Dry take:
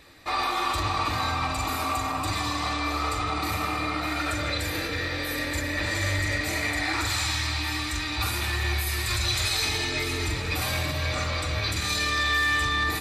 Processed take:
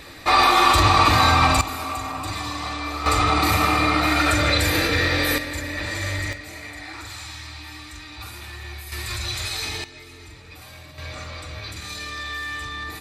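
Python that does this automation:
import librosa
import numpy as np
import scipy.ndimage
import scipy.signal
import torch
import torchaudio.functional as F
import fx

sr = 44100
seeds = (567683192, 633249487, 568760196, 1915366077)

y = fx.gain(x, sr, db=fx.steps((0.0, 11.0), (1.61, -1.0), (3.06, 9.0), (5.38, -0.5), (6.33, -9.5), (8.92, -2.5), (9.84, -15.0), (10.98, -7.0)))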